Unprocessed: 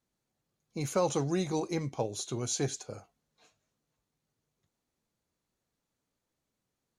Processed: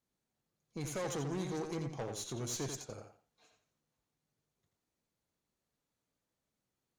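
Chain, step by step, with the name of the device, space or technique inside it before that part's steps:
rockabilly slapback (tube saturation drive 32 dB, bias 0.45; tape delay 87 ms, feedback 25%, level −4.5 dB, low-pass 5,200 Hz)
level −2.5 dB

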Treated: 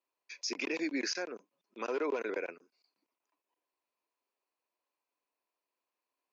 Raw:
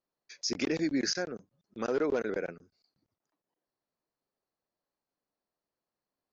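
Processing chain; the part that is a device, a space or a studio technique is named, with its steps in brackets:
laptop speaker (high-pass filter 280 Hz 24 dB per octave; parametric band 1,000 Hz +11 dB 0.23 octaves; parametric band 2,500 Hz +11.5 dB 0.43 octaves; brickwall limiter −23 dBFS, peak gain reduction 7 dB)
level −2.5 dB

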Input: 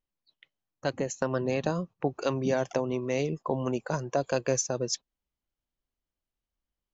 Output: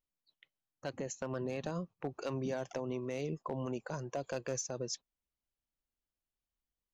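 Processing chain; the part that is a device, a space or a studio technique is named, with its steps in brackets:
clipper into limiter (hard clipping −18 dBFS, distortion −22 dB; brickwall limiter −22.5 dBFS, peak gain reduction 4.5 dB)
level −6 dB

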